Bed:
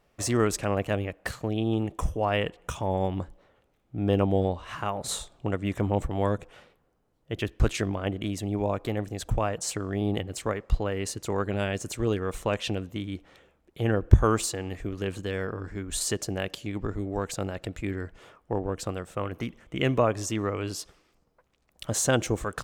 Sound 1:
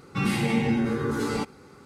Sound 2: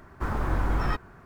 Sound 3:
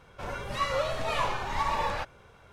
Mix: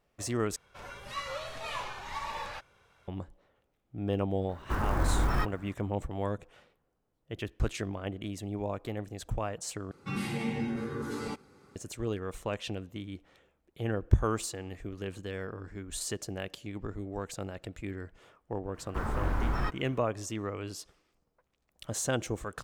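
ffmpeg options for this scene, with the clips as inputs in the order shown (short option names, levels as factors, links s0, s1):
-filter_complex "[2:a]asplit=2[s0][s1];[0:a]volume=0.447[s2];[3:a]tiltshelf=f=1100:g=-4[s3];[s0]acrusher=bits=7:mode=log:mix=0:aa=0.000001[s4];[s2]asplit=3[s5][s6][s7];[s5]atrim=end=0.564[s8];[s3]atrim=end=2.52,asetpts=PTS-STARTPTS,volume=0.376[s9];[s6]atrim=start=3.076:end=9.914[s10];[1:a]atrim=end=1.85,asetpts=PTS-STARTPTS,volume=0.355[s11];[s7]atrim=start=11.756[s12];[s4]atrim=end=1.25,asetpts=PTS-STARTPTS,volume=0.841,afade=t=in:d=0.004:c=hsin,afade=t=out:st=1.246:d=0.004:c=hsin,adelay=198009S[s13];[s1]atrim=end=1.25,asetpts=PTS-STARTPTS,volume=0.631,afade=t=in:d=0.004:c=hsin,afade=t=out:st=1.246:d=0.004:c=hsin,adelay=18740[s14];[s8][s9]acrossfade=d=0.004:c1=hsin:c2=hsin[s15];[s15][s10]acrossfade=d=0.004:c1=hsin:c2=hsin[s16];[s16][s11]acrossfade=d=0.004:c1=hsin:c2=hsin[s17];[s17][s12]acrossfade=d=0.004:c1=hsin:c2=hsin[s18];[s18][s13][s14]amix=inputs=3:normalize=0"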